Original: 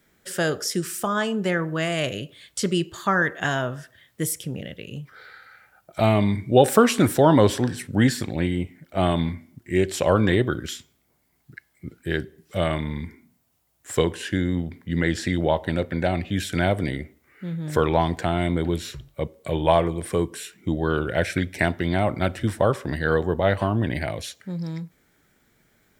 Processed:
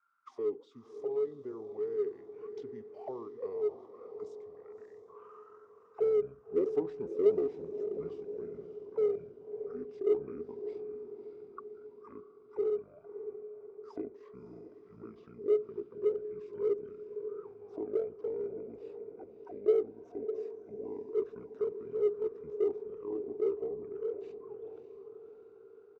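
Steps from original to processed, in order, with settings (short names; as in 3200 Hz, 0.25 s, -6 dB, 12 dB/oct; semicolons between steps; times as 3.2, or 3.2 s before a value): tone controls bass -1 dB, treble +5 dB; auto-wah 630–2100 Hz, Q 21, down, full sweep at -22 dBFS; diffused feedback echo 0.601 s, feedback 52%, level -10 dB; in parallel at -10 dB: overloaded stage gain 33 dB; on the sum: pitch shift -7 st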